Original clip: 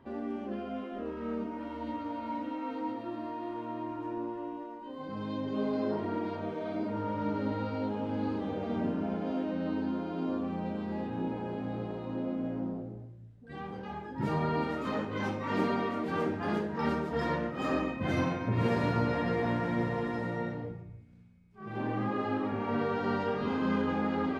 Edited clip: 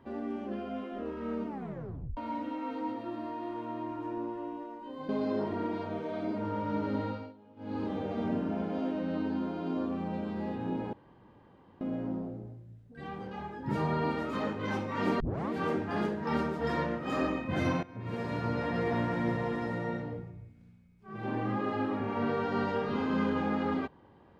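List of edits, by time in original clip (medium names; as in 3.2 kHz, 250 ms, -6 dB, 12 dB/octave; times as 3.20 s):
1.47 s: tape stop 0.70 s
5.09–5.61 s: delete
7.57–8.36 s: dip -22.5 dB, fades 0.28 s
11.45–12.33 s: room tone
15.72 s: tape start 0.30 s
18.35–19.42 s: fade in, from -17 dB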